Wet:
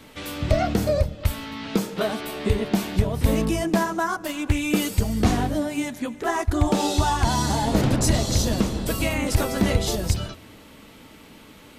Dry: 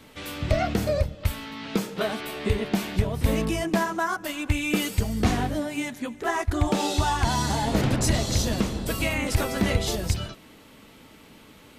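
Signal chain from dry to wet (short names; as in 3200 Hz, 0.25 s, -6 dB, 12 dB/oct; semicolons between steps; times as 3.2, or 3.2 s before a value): dynamic EQ 2200 Hz, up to -4 dB, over -40 dBFS, Q 0.91; on a send at -22 dB: reverb RT60 2.2 s, pre-delay 3 ms; 4.07–4.59 on the sum: Doppler distortion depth 0.32 ms; gain +3 dB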